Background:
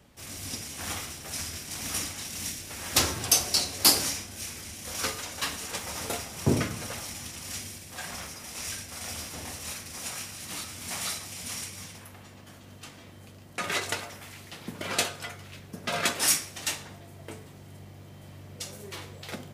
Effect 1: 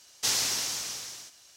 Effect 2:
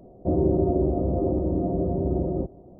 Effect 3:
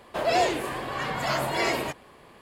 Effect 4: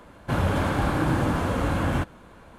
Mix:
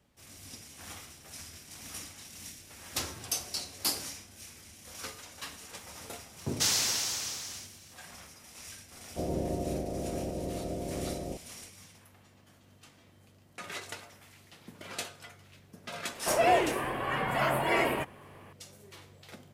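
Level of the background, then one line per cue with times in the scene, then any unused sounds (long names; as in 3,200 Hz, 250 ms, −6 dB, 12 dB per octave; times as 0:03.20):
background −11 dB
0:06.37: mix in 1 −0.5 dB
0:08.91: mix in 2 −11 dB + ceiling on every frequency bin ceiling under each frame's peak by 13 dB
0:16.12: mix in 3 −1 dB + flat-topped bell 5,200 Hz −12 dB 1.2 octaves
not used: 4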